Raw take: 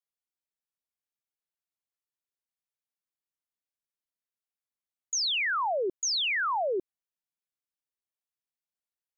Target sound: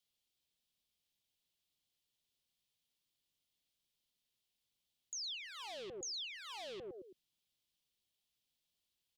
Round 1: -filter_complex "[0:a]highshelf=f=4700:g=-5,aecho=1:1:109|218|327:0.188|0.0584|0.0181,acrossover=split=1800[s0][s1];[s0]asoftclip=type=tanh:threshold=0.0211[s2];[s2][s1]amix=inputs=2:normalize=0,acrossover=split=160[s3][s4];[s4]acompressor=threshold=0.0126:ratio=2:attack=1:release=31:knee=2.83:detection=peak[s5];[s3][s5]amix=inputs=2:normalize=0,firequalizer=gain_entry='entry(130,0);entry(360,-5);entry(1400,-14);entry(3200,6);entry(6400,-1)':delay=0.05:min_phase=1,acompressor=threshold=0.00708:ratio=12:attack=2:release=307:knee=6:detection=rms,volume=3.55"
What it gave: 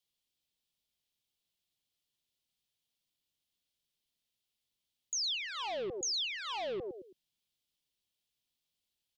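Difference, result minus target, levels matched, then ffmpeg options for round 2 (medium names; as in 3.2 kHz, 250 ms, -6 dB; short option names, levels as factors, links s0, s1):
compression: peak gain reduction -8.5 dB; saturation: distortion -5 dB
-filter_complex "[0:a]highshelf=f=4700:g=-5,aecho=1:1:109|218|327:0.188|0.0584|0.0181,acrossover=split=1800[s0][s1];[s0]asoftclip=type=tanh:threshold=0.00794[s2];[s2][s1]amix=inputs=2:normalize=0,acrossover=split=160[s3][s4];[s4]acompressor=threshold=0.0126:ratio=2:attack=1:release=31:knee=2.83:detection=peak[s5];[s3][s5]amix=inputs=2:normalize=0,firequalizer=gain_entry='entry(130,0);entry(360,-5);entry(1400,-14);entry(3200,6);entry(6400,-1)':delay=0.05:min_phase=1,acompressor=threshold=0.00237:ratio=12:attack=2:release=307:knee=6:detection=rms,volume=3.55"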